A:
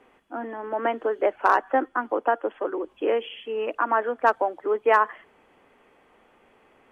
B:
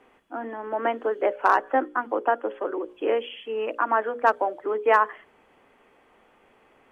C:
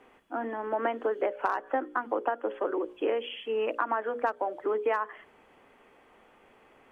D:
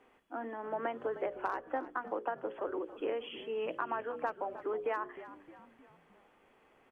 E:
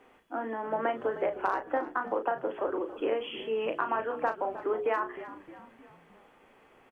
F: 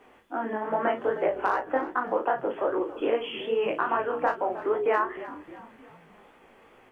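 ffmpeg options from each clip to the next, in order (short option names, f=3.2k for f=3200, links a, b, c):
-af "bandreject=f=60:t=h:w=6,bandreject=f=120:t=h:w=6,bandreject=f=180:t=h:w=6,bandreject=f=240:t=h:w=6,bandreject=f=300:t=h:w=6,bandreject=f=360:t=h:w=6,bandreject=f=420:t=h:w=6,bandreject=f=480:t=h:w=6,bandreject=f=540:t=h:w=6,bandreject=f=600:t=h:w=6"
-af "acompressor=threshold=-24dB:ratio=12"
-filter_complex "[0:a]asplit=5[a][b][c][d][e];[b]adelay=309,afreqshift=-64,volume=-14.5dB[f];[c]adelay=618,afreqshift=-128,volume=-21.1dB[g];[d]adelay=927,afreqshift=-192,volume=-27.6dB[h];[e]adelay=1236,afreqshift=-256,volume=-34.2dB[i];[a][f][g][h][i]amix=inputs=5:normalize=0,volume=-7dB"
-filter_complex "[0:a]asplit=2[a][b];[b]adelay=36,volume=-8dB[c];[a][c]amix=inputs=2:normalize=0,volume=5.5dB"
-af "flanger=delay=16:depth=7.7:speed=2.5,volume=7dB"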